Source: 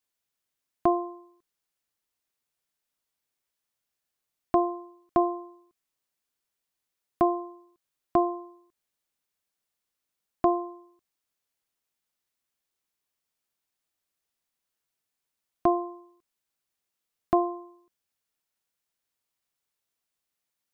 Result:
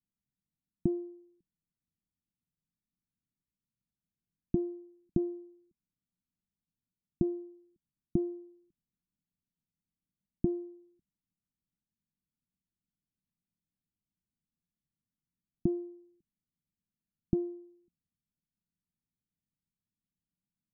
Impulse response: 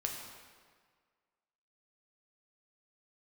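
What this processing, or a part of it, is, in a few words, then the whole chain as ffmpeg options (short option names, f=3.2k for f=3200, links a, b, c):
the neighbour's flat through the wall: -af "lowpass=f=250:w=0.5412,lowpass=f=250:w=1.3066,equalizer=f=180:t=o:w=0.6:g=7,volume=5.5dB"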